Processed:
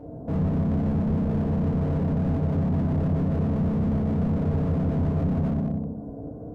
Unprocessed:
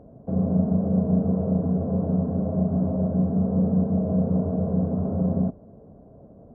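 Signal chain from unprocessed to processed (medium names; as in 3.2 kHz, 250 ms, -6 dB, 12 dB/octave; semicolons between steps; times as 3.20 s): FDN reverb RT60 1 s, low-frequency decay 1.5×, high-frequency decay 0.95×, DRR -6.5 dB; peak limiter -17 dBFS, peak gain reduction 10.5 dB; slew-rate limiter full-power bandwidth 14 Hz; trim +1.5 dB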